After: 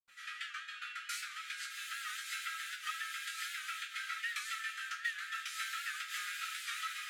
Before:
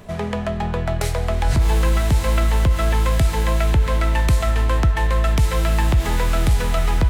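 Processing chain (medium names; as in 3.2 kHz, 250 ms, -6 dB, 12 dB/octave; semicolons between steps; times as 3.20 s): treble shelf 7.3 kHz -5.5 dB; peak limiter -13.5 dBFS, peak gain reduction 5 dB; brick-wall FIR high-pass 1.2 kHz; reverberation, pre-delay 76 ms; warped record 78 rpm, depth 100 cents; trim +7.5 dB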